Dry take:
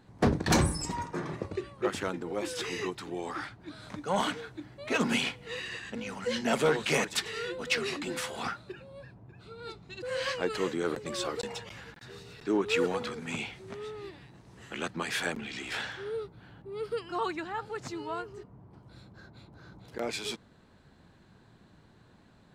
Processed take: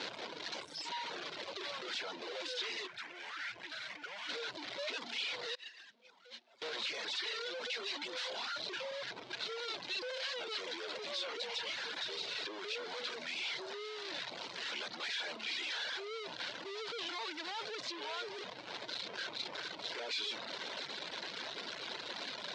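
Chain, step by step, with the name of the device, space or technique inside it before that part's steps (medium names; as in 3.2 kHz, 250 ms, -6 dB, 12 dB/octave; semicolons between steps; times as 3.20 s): home computer beeper (one-bit comparator; cabinet simulation 680–4800 Hz, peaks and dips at 790 Hz -7 dB, 1.2 kHz -9 dB, 1.8 kHz -5 dB, 2.6 kHz -3 dB, 3.9 kHz +4 dB); 2.87–4.29 s: graphic EQ 250/500/1000/2000/4000/8000 Hz -7/-9/-5/+5/-9/-4 dB; 5.55–6.62 s: gate -36 dBFS, range -22 dB; reverb removal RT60 0.94 s; trim +1 dB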